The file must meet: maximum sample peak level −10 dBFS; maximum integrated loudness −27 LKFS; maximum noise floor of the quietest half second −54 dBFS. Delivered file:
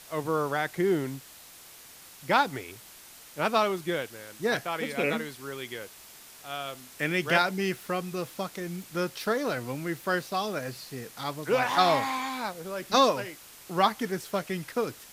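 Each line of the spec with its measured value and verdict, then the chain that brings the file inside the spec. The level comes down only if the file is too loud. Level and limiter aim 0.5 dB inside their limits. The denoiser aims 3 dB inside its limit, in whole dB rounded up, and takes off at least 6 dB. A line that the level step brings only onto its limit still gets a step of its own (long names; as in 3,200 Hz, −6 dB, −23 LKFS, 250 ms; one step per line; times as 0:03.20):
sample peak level −8.0 dBFS: out of spec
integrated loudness −29.0 LKFS: in spec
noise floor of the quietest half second −50 dBFS: out of spec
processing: broadband denoise 7 dB, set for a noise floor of −50 dBFS
brickwall limiter −10.5 dBFS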